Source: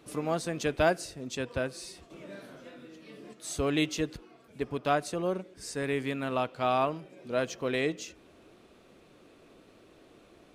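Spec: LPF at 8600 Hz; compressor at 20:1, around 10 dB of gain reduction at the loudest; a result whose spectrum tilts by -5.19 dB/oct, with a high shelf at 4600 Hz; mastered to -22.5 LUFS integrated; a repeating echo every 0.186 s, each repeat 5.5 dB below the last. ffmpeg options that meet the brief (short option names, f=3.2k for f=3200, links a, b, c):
-af "lowpass=8.6k,highshelf=f=4.6k:g=-7,acompressor=threshold=-30dB:ratio=20,aecho=1:1:186|372|558|744|930|1116|1302:0.531|0.281|0.149|0.079|0.0419|0.0222|0.0118,volume=14dB"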